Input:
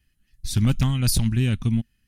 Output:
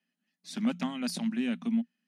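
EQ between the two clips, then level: dynamic EQ 1900 Hz, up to +4 dB, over -49 dBFS, Q 1.4; rippled Chebyshev high-pass 170 Hz, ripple 9 dB; air absorption 55 m; 0.0 dB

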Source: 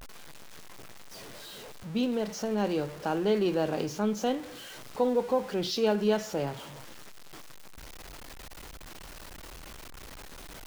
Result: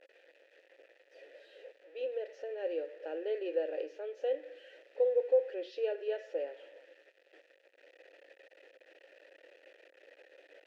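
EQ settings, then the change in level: vowel filter e; brick-wall FIR high-pass 280 Hz; LPF 3700 Hz 6 dB/oct; +2.5 dB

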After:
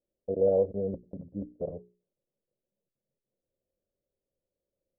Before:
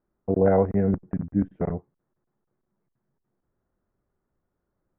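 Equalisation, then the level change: ladder low-pass 580 Hz, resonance 75%; notches 60/120/180/240/300/360/420 Hz; -2.0 dB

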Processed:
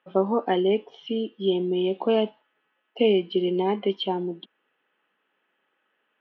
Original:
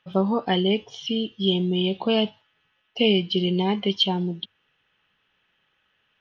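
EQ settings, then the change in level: HPF 270 Hz 24 dB/oct; LPF 2300 Hz 12 dB/oct; tilt -2 dB/oct; 0.0 dB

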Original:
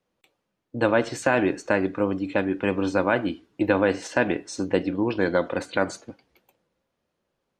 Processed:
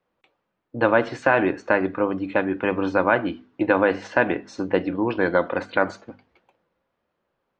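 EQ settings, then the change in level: air absorption 160 m; bell 1200 Hz +6 dB 2.1 oct; notches 50/100/150/200/250 Hz; 0.0 dB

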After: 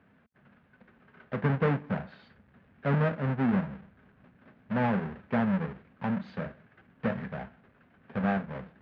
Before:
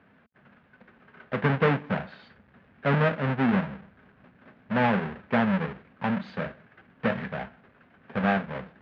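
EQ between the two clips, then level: dynamic EQ 3300 Hz, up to -5 dB, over -44 dBFS, Q 0.9; low shelf 250 Hz +5.5 dB; -5.5 dB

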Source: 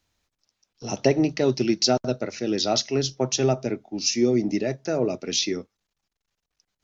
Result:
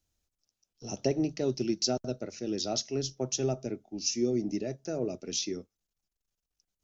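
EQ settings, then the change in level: ten-band EQ 125 Hz -5 dB, 250 Hz -4 dB, 500 Hz -4 dB, 1000 Hz -10 dB, 2000 Hz -10 dB, 4000 Hz -7 dB; -2.0 dB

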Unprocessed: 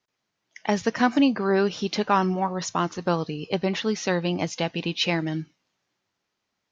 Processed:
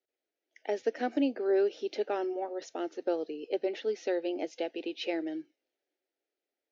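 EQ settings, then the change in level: HPF 270 Hz 24 dB/oct; LPF 1000 Hz 6 dB/oct; fixed phaser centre 440 Hz, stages 4; -2.0 dB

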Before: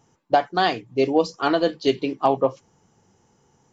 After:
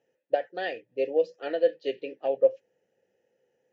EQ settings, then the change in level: vowel filter e; +2.0 dB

